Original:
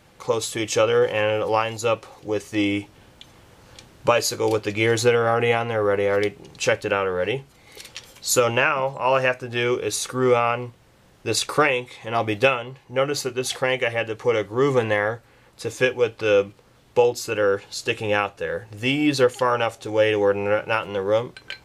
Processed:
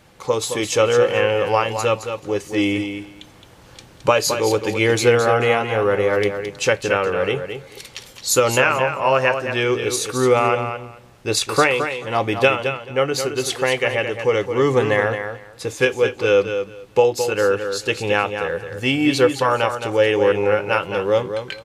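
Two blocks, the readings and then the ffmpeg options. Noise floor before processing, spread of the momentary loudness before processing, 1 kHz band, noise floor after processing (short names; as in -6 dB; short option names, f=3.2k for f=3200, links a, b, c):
-54 dBFS, 9 LU, +3.0 dB, -46 dBFS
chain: -af "aecho=1:1:217|434|651:0.398|0.0677|0.0115,volume=2.5dB"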